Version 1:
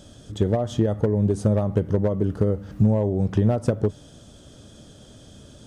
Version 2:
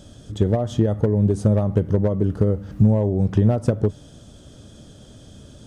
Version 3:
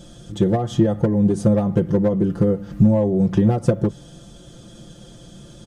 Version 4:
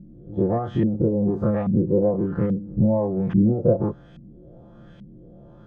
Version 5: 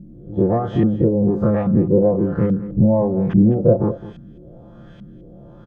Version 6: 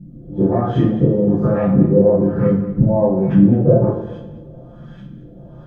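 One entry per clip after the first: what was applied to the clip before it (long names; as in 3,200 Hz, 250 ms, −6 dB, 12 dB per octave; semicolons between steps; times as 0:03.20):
low-shelf EQ 260 Hz +4 dB
comb filter 5.8 ms, depth 100%
every bin's largest magnitude spread in time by 60 ms; auto-filter low-pass saw up 1.2 Hz 200–2,400 Hz; level −8.5 dB
single-tap delay 210 ms −15.5 dB; level +4.5 dB
coupled-rooms reverb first 0.5 s, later 1.9 s, from −18 dB, DRR −8.5 dB; level −6.5 dB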